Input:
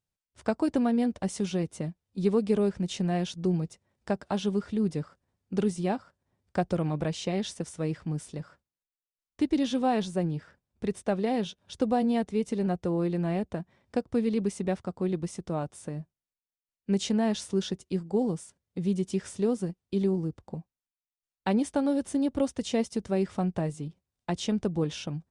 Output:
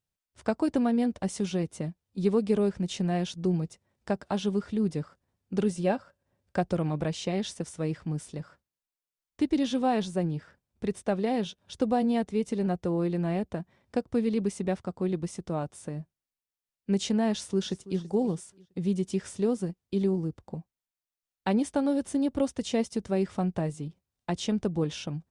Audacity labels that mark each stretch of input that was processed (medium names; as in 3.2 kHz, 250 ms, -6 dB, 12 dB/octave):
5.640000	6.580000	small resonant body resonances 560/1600/2700 Hz, height 9 dB
17.330000	17.990000	echo throw 330 ms, feedback 30%, level -16.5 dB